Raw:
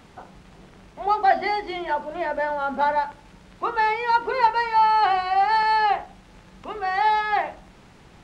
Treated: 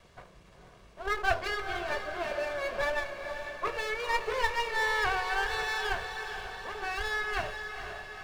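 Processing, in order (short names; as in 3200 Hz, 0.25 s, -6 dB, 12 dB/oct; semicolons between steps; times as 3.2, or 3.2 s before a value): minimum comb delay 1.8 ms; diffused feedback echo 0.483 s, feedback 60%, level -7.5 dB; gain -6.5 dB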